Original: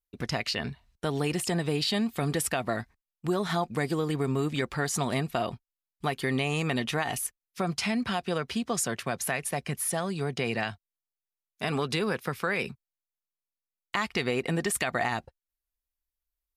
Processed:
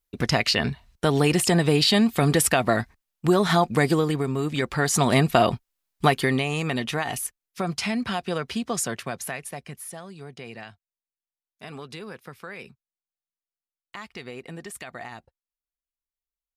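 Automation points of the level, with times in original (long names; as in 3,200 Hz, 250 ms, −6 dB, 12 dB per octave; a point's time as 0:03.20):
0:03.91 +8.5 dB
0:04.32 +1 dB
0:05.29 +11 dB
0:06.06 +11 dB
0:06.47 +2 dB
0:08.86 +2 dB
0:10.04 −10 dB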